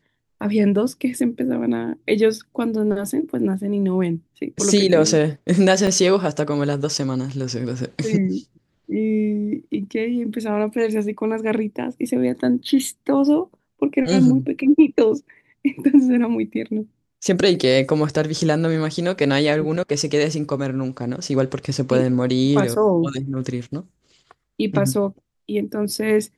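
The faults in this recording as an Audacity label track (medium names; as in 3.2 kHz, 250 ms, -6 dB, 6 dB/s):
5.870000	5.870000	dropout 4.3 ms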